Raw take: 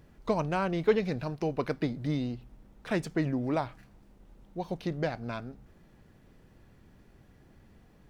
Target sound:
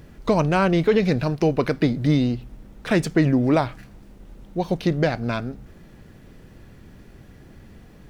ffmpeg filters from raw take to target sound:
-af "equalizer=f=890:w=1.5:g=-3.5,alimiter=level_in=19.5dB:limit=-1dB:release=50:level=0:latency=1,volume=-7.5dB"

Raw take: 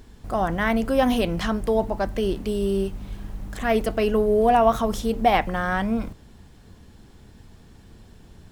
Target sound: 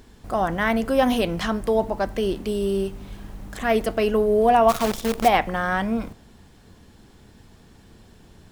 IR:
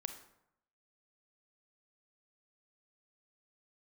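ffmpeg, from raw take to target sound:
-filter_complex "[0:a]lowshelf=f=140:g=-6,asplit=3[a][b][c];[a]afade=t=out:st=4.68:d=0.02[d];[b]acrusher=bits=5:dc=4:mix=0:aa=0.000001,afade=t=in:st=4.68:d=0.02,afade=t=out:st=5.27:d=0.02[e];[c]afade=t=in:st=5.27:d=0.02[f];[d][e][f]amix=inputs=3:normalize=0,asplit=2[g][h];[1:a]atrim=start_sample=2205[i];[h][i]afir=irnorm=-1:irlink=0,volume=-12.5dB[j];[g][j]amix=inputs=2:normalize=0"

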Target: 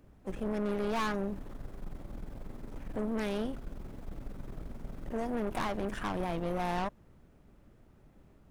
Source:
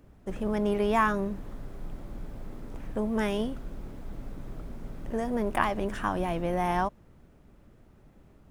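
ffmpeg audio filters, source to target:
-filter_complex "[0:a]asplit=2[a][b];[b]asetrate=58866,aresample=44100,atempo=0.749154,volume=-18dB[c];[a][c]amix=inputs=2:normalize=0,aeval=exprs='(tanh(28.2*val(0)+0.65)-tanh(0.65))/28.2':c=same"

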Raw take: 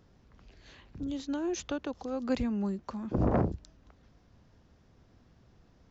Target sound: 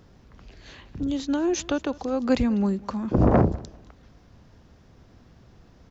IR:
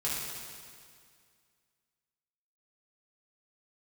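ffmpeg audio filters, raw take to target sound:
-af "aecho=1:1:198|396:0.0794|0.0191,volume=8.5dB"

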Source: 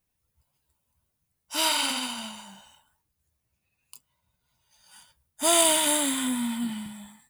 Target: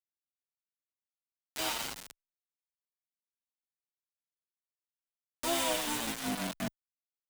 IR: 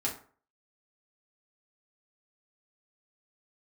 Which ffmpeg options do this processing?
-filter_complex "[0:a]aemphasis=mode=reproduction:type=50fm,asplit=2[a][b];[b]asetrate=35002,aresample=44100,atempo=1.25992,volume=-6dB[c];[a][c]amix=inputs=2:normalize=0,acrusher=bits=3:mix=0:aa=0.000001,acompressor=mode=upward:threshold=-24dB:ratio=2.5,asplit=2[d][e];[e]adelay=7.7,afreqshift=1.4[f];[d][f]amix=inputs=2:normalize=1,volume=-6dB"

